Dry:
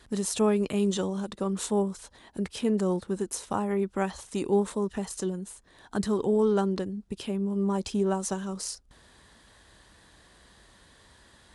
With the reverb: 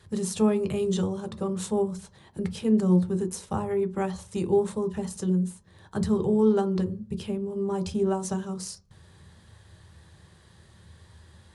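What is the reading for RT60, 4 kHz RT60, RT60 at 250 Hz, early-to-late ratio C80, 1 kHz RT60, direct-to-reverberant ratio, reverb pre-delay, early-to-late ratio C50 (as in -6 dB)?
0.40 s, 0.30 s, 0.40 s, 23.0 dB, 0.40 s, 7.0 dB, 3 ms, 18.0 dB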